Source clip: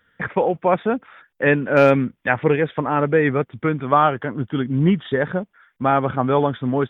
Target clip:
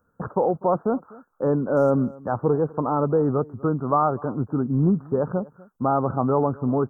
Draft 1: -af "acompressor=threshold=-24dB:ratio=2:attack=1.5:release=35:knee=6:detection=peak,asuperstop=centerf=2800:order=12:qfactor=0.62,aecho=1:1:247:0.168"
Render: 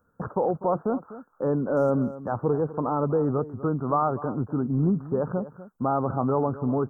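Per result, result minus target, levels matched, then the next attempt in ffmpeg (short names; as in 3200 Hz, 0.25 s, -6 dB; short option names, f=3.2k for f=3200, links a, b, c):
echo-to-direct +7 dB; compressor: peak gain reduction +3.5 dB
-af "acompressor=threshold=-24dB:ratio=2:attack=1.5:release=35:knee=6:detection=peak,asuperstop=centerf=2800:order=12:qfactor=0.62,aecho=1:1:247:0.075"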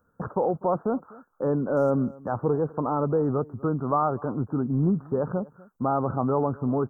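compressor: peak gain reduction +3.5 dB
-af "acompressor=threshold=-17dB:ratio=2:attack=1.5:release=35:knee=6:detection=peak,asuperstop=centerf=2800:order=12:qfactor=0.62,aecho=1:1:247:0.075"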